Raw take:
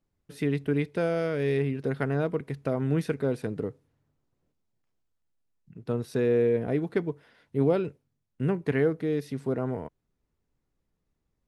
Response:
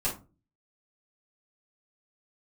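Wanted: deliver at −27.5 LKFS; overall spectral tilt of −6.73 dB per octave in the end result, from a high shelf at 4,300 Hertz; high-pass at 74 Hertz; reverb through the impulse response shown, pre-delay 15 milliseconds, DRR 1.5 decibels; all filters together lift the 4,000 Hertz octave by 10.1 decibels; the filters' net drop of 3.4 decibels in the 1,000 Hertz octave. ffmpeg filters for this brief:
-filter_complex "[0:a]highpass=74,equalizer=frequency=1000:width_type=o:gain=-6.5,equalizer=frequency=4000:width_type=o:gain=8.5,highshelf=frequency=4300:gain=8.5,asplit=2[link_01][link_02];[1:a]atrim=start_sample=2205,adelay=15[link_03];[link_02][link_03]afir=irnorm=-1:irlink=0,volume=-8.5dB[link_04];[link_01][link_04]amix=inputs=2:normalize=0,volume=-1.5dB"

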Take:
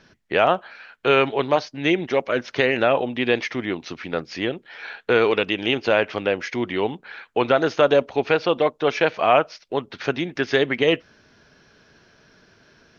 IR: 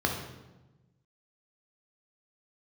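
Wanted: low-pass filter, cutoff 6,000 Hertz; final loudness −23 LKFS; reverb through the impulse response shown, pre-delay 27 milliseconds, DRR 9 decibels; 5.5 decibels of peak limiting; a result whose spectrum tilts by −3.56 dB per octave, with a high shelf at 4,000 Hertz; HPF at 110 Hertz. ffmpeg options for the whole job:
-filter_complex "[0:a]highpass=110,lowpass=6000,highshelf=frequency=4000:gain=-6.5,alimiter=limit=-9.5dB:level=0:latency=1,asplit=2[link_01][link_02];[1:a]atrim=start_sample=2205,adelay=27[link_03];[link_02][link_03]afir=irnorm=-1:irlink=0,volume=-19.5dB[link_04];[link_01][link_04]amix=inputs=2:normalize=0,volume=0.5dB"

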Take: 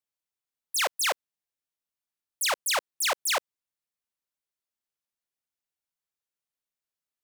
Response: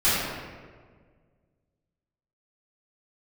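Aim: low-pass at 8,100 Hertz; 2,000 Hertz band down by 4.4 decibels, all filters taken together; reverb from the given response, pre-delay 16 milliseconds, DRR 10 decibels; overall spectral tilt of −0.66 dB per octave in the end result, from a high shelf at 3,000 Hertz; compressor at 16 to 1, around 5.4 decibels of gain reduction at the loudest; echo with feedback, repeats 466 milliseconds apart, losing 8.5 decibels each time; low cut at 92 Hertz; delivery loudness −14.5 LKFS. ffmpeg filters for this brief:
-filter_complex "[0:a]highpass=92,lowpass=8100,equalizer=frequency=2000:width_type=o:gain=-8.5,highshelf=frequency=3000:gain=7,acompressor=threshold=-26dB:ratio=16,aecho=1:1:466|932|1398|1864:0.376|0.143|0.0543|0.0206,asplit=2[link_01][link_02];[1:a]atrim=start_sample=2205,adelay=16[link_03];[link_02][link_03]afir=irnorm=-1:irlink=0,volume=-27dB[link_04];[link_01][link_04]amix=inputs=2:normalize=0,volume=16.5dB"

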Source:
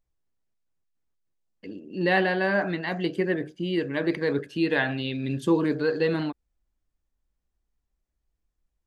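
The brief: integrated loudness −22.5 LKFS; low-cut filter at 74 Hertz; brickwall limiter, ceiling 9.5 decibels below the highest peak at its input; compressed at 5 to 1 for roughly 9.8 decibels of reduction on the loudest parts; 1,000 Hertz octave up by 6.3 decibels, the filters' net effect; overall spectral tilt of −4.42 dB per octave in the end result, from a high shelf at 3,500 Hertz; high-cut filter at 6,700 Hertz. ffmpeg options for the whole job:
ffmpeg -i in.wav -af "highpass=74,lowpass=6700,equalizer=frequency=1000:width_type=o:gain=8.5,highshelf=frequency=3500:gain=6,acompressor=threshold=-25dB:ratio=5,volume=10.5dB,alimiter=limit=-12.5dB:level=0:latency=1" out.wav

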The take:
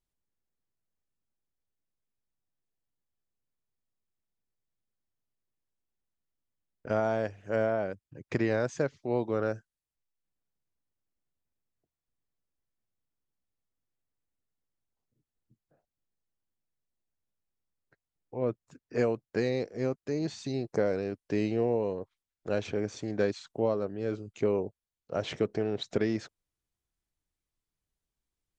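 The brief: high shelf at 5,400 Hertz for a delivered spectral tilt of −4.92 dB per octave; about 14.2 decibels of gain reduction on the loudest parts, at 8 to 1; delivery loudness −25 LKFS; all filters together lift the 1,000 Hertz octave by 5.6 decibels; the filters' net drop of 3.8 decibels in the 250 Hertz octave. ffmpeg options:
ffmpeg -i in.wav -af "equalizer=frequency=250:width_type=o:gain=-6,equalizer=frequency=1000:width_type=o:gain=8.5,highshelf=frequency=5400:gain=7.5,acompressor=threshold=-37dB:ratio=8,volume=18dB" out.wav

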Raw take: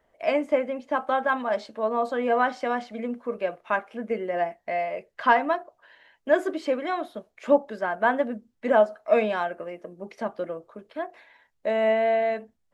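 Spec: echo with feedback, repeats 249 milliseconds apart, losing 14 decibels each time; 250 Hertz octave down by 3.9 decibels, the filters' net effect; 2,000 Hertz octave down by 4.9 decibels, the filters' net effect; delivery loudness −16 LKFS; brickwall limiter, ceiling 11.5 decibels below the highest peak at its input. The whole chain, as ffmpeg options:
ffmpeg -i in.wav -af "equalizer=frequency=250:width_type=o:gain=-4.5,equalizer=frequency=2000:width_type=o:gain=-6.5,alimiter=limit=-19.5dB:level=0:latency=1,aecho=1:1:249|498:0.2|0.0399,volume=15dB" out.wav

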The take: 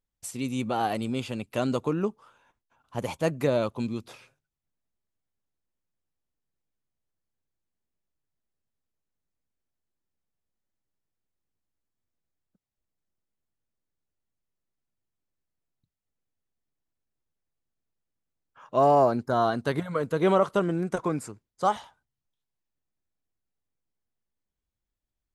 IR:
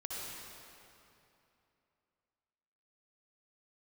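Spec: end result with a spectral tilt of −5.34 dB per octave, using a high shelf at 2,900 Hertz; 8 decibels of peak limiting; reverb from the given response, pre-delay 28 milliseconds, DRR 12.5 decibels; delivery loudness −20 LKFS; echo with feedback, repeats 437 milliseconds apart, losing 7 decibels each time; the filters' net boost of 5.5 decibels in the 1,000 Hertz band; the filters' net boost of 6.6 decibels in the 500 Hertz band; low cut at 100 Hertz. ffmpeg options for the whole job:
-filter_complex "[0:a]highpass=100,equalizer=frequency=500:width_type=o:gain=7,equalizer=frequency=1000:width_type=o:gain=4,highshelf=frequency=2900:gain=3.5,alimiter=limit=-12.5dB:level=0:latency=1,aecho=1:1:437|874|1311|1748|2185:0.447|0.201|0.0905|0.0407|0.0183,asplit=2[link_01][link_02];[1:a]atrim=start_sample=2205,adelay=28[link_03];[link_02][link_03]afir=irnorm=-1:irlink=0,volume=-14dB[link_04];[link_01][link_04]amix=inputs=2:normalize=0,volume=5dB"

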